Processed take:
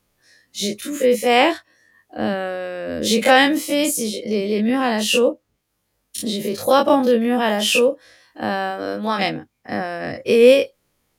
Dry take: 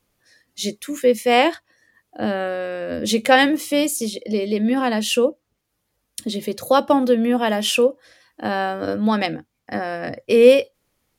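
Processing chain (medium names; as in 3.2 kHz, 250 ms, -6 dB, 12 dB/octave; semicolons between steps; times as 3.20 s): every event in the spectrogram widened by 60 ms; 8.70–9.18 s: high-pass 260 Hz -> 560 Hz 6 dB/octave; trim -2 dB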